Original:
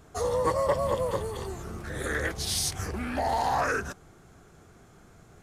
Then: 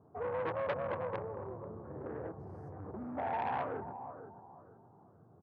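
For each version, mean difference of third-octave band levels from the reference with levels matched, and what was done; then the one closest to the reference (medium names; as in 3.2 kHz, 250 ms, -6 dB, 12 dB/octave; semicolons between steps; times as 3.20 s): 10.0 dB: elliptic band-pass 100–1000 Hz, stop band 50 dB; feedback delay 485 ms, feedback 30%, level -12 dB; transformer saturation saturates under 1.3 kHz; trim -6 dB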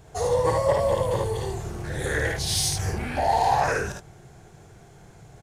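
2.5 dB: graphic EQ with 31 bands 125 Hz +8 dB, 250 Hz -10 dB, 800 Hz +4 dB, 1.25 kHz -10 dB, 12.5 kHz -4 dB; in parallel at -8 dB: saturation -23.5 dBFS, distortion -14 dB; on the sum: early reflections 54 ms -4.5 dB, 74 ms -5.5 dB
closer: second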